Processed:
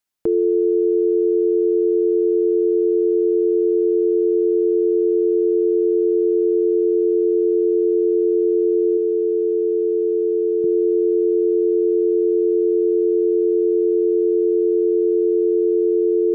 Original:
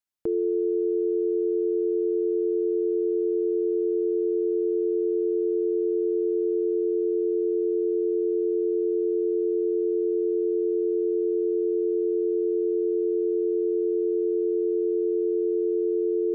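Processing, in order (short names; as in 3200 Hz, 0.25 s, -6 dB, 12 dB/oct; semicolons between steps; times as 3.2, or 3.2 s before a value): bell 85 Hz -7 dB 0.28 oct, from 8.97 s 320 Hz, from 10.64 s 170 Hz; gain +7.5 dB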